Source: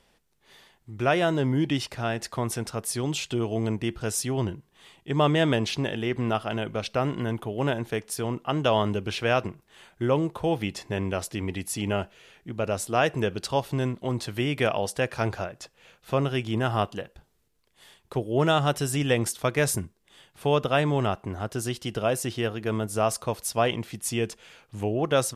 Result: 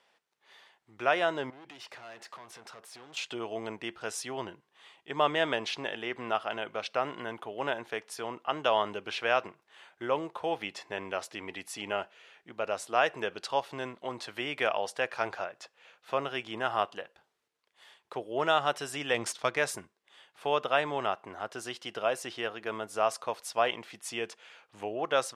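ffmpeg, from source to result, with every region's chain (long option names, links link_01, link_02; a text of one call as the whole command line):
ffmpeg -i in.wav -filter_complex "[0:a]asettb=1/sr,asplit=3[link_01][link_02][link_03];[link_01]atrim=end=1.504[link_04];[link_02]atrim=start=1.5:end=3.17,asetpts=PTS-STARTPTS,afade=type=in:duration=0.004:curve=qsin,afade=type=out:start_time=1.666:duration=0.004:curve=qsin,acompressor=threshold=-32dB:ratio=16:attack=3.2:release=140:knee=1:detection=peak,asoftclip=type=hard:threshold=-38.5dB[link_05];[link_03]atrim=start=3.166[link_06];[link_04][link_05]acrossfade=duration=0.004:curve1=hsin:curve2=qsin[link_07];[link_07][link_06]acrossfade=duration=0.004:curve1=qsin:curve2=hsin,asettb=1/sr,asplit=3[link_08][link_09][link_10];[link_08]atrim=end=19.144[link_11];[link_09]atrim=start=19.14:end=19.58,asetpts=PTS-STARTPTS,afade=type=in:duration=0.004:curve=qsin,afade=type=out:start_time=0.436:duration=0.004:curve=qsin,bass=frequency=250:gain=6,treble=frequency=4000:gain=8,adynamicsmooth=sensitivity=8:basefreq=5000[link_12];[link_10]atrim=start=19.576[link_13];[link_11][link_12]acrossfade=duration=0.004:curve1=hsin:curve2=qsin[link_14];[link_14][link_13]acrossfade=duration=0.004:curve1=qsin:curve2=hsin,highpass=730,aemphasis=mode=reproduction:type=bsi" out.wav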